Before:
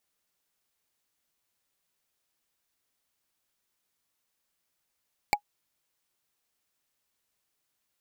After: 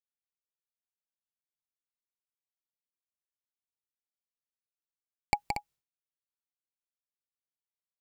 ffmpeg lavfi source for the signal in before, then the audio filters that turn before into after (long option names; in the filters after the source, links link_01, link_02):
-f lavfi -i "aevalsrc='0.188*pow(10,-3*t/0.08)*sin(2*PI*828*t)+0.15*pow(10,-3*t/0.024)*sin(2*PI*2282.8*t)+0.119*pow(10,-3*t/0.011)*sin(2*PI*4474.5*t)+0.0944*pow(10,-3*t/0.006)*sin(2*PI*7396.5*t)+0.075*pow(10,-3*t/0.004)*sin(2*PI*11045.5*t)':duration=0.45:sample_rate=44100"
-filter_complex "[0:a]agate=range=-33dB:threshold=-52dB:ratio=3:detection=peak,bass=frequency=250:gain=10,treble=frequency=4000:gain=0,asplit=2[link_01][link_02];[link_02]aecho=0:1:172|233.2:0.501|0.316[link_03];[link_01][link_03]amix=inputs=2:normalize=0"